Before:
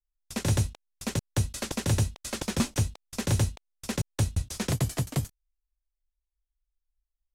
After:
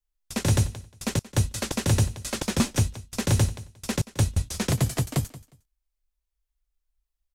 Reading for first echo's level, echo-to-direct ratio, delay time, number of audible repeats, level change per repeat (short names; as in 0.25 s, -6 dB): -18.0 dB, -18.0 dB, 0.179 s, 2, -14.5 dB